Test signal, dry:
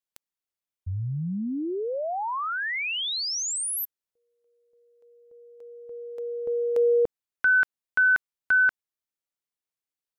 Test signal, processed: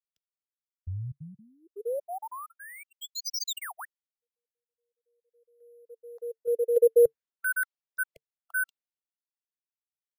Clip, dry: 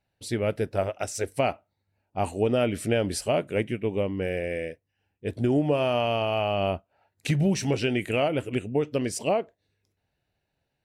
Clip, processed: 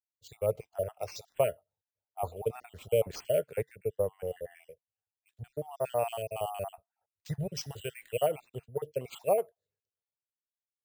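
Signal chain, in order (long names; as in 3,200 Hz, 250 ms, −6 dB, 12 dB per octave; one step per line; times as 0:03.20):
time-frequency cells dropped at random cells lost 50%
drawn EQ curve 140 Hz 0 dB, 290 Hz −16 dB, 450 Hz +6 dB, 2,200 Hz −5 dB, 7,000 Hz +1 dB, 10,000 Hz 0 dB
bad sample-rate conversion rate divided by 4×, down none, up hold
multiband upward and downward expander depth 70%
level −7.5 dB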